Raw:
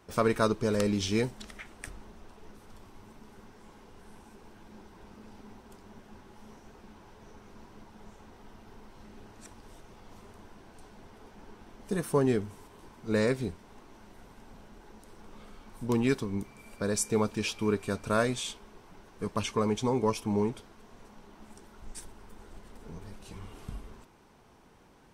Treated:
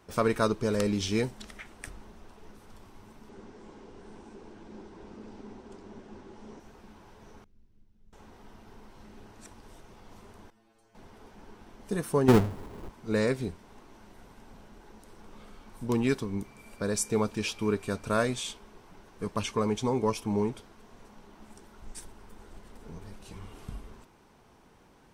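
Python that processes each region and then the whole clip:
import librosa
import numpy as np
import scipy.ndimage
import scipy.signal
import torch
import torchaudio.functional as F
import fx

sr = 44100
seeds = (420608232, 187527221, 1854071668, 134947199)

y = fx.chain(x, sr, fx.lowpass(hz=8200.0, slope=24),
    fx.peak_eq(hz=350.0, db=8.0, octaves=1.5), at=(3.29, 6.6))
y = fx.chain(y, sr, fx.median_filter(points=5),
    fx.tone_stack(knobs='10-0-1'), at=(7.44, 8.13))
y = fx.chain(y, sr, fx.low_shelf(hz=170.0, db=-6.0),
    fx.stiff_resonator(f0_hz=110.0, decay_s=0.42, stiffness=0.002), at=(10.5, 10.95))
y = fx.chain(y, sr, fx.halfwave_hold(),
    fx.tilt_shelf(db=5.5, hz=1400.0), at=(12.28, 12.9))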